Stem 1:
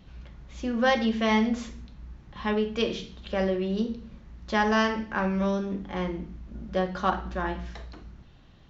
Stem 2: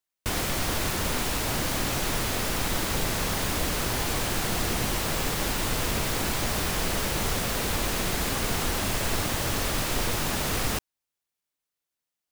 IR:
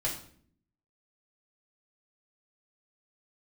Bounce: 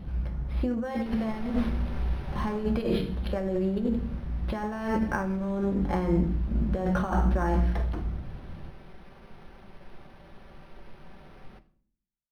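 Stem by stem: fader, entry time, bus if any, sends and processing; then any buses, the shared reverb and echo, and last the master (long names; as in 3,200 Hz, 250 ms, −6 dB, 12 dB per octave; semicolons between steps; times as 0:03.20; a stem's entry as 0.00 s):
+3.0 dB, 0.00 s, send −13 dB, low-shelf EQ 240 Hz +4 dB; compressor whose output falls as the input rises −31 dBFS, ratio −1
0:02.38 −13.5 dB → 0:02.87 −23 dB, 0.80 s, send −12.5 dB, comb filter 5.2 ms, depth 54%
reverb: on, RT60 0.55 s, pre-delay 4 ms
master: high-shelf EQ 2,200 Hz −10.5 dB; linearly interpolated sample-rate reduction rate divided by 6×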